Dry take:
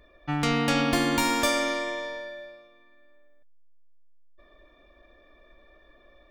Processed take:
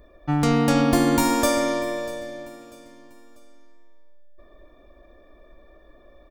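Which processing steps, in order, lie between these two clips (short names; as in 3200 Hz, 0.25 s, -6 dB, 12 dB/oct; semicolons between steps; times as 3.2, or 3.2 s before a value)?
bell 2700 Hz -11 dB 2.1 oct; feedback echo 0.643 s, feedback 40%, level -19 dB; gain +7 dB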